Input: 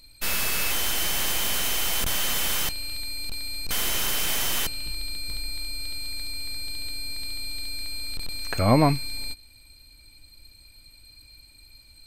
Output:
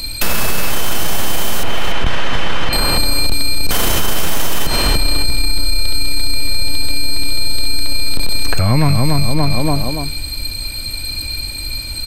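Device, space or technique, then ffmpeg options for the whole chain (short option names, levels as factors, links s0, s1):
mastering chain: -filter_complex "[0:a]asettb=1/sr,asplit=3[s0][s1][s2];[s0]atrim=end=1.634[s3];[s1]atrim=start=1.63:end=2.73,asetpts=PTS-STARTPTS,afade=t=in:d=0.004:c=qsin,afade=t=out:st=1.096:d=0.004:c=qsin,lowpass=2400[s4];[s2]atrim=start=2.726[s5];[s3][s4]acrossfade=d=0.004:c1=hsin:c2=qsin[s6];[s6][s5]acrossfade=d=0.004:c1=qsin:c2=hsin,equalizer=f=2100:t=o:w=0.26:g=-2.5,asplit=2[s7][s8];[s8]adelay=287,lowpass=f=2300:p=1,volume=0.501,asplit=2[s9][s10];[s10]adelay=287,lowpass=f=2300:p=1,volume=0.37,asplit=2[s11][s12];[s12]adelay=287,lowpass=f=2300:p=1,volume=0.37,asplit=2[s13][s14];[s14]adelay=287,lowpass=f=2300:p=1,volume=0.37[s15];[s7][s9][s11][s13][s15]amix=inputs=5:normalize=0,acrossover=split=160|1300[s16][s17][s18];[s16]acompressor=threshold=0.0562:ratio=4[s19];[s17]acompressor=threshold=0.00891:ratio=4[s20];[s18]acompressor=threshold=0.01:ratio=4[s21];[s19][s20][s21]amix=inputs=3:normalize=0,acompressor=threshold=0.0316:ratio=3,asoftclip=type=tanh:threshold=0.0708,alimiter=level_in=33.5:limit=0.891:release=50:level=0:latency=1,volume=0.668"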